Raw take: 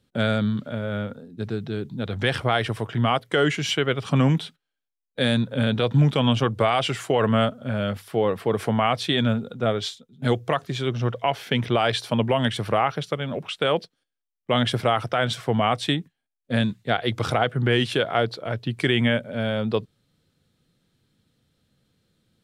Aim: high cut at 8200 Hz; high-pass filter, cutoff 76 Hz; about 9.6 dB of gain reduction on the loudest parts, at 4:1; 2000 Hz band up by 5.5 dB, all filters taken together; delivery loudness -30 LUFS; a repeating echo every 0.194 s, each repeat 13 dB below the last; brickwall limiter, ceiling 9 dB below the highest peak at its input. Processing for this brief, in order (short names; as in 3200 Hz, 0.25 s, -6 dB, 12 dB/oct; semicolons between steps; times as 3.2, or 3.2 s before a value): HPF 76 Hz; LPF 8200 Hz; bell 2000 Hz +7 dB; compressor 4:1, threshold -26 dBFS; limiter -19 dBFS; feedback echo 0.194 s, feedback 22%, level -13 dB; gain +1 dB